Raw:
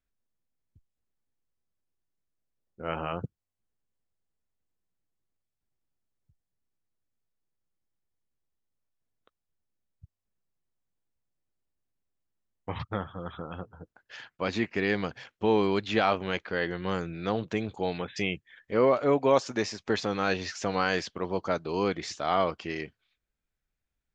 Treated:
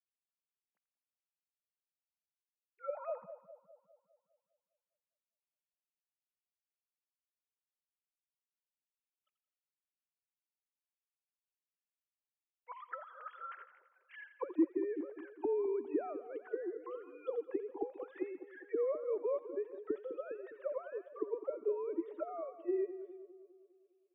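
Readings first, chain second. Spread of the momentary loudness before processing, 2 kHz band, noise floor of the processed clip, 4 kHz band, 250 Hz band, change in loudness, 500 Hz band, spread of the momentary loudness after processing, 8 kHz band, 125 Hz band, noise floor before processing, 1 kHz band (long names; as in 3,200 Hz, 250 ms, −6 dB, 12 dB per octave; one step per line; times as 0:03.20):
15 LU, −21.5 dB, below −85 dBFS, below −35 dB, −9.0 dB, −10.5 dB, −8.0 dB, 16 LU, can't be measured, below −40 dB, below −85 dBFS, −17.0 dB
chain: three sine waves on the formant tracks
envelope filter 300–2,700 Hz, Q 5.1, down, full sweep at −27.5 dBFS
echo with a time of its own for lows and highs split 990 Hz, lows 203 ms, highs 85 ms, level −12 dB
level +1.5 dB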